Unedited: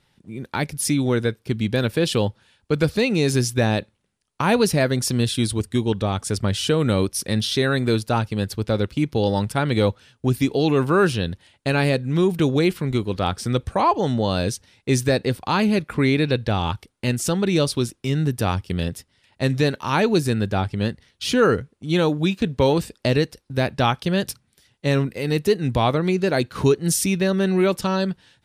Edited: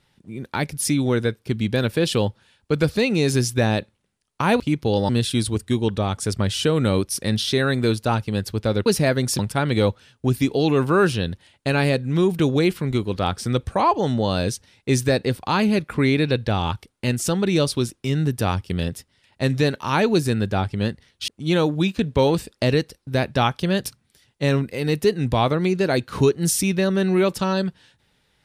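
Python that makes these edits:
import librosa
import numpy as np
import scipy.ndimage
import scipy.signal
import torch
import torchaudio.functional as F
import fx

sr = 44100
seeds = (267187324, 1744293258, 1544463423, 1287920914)

y = fx.edit(x, sr, fx.swap(start_s=4.6, length_s=0.53, other_s=8.9, other_length_s=0.49),
    fx.cut(start_s=21.28, length_s=0.43), tone=tone)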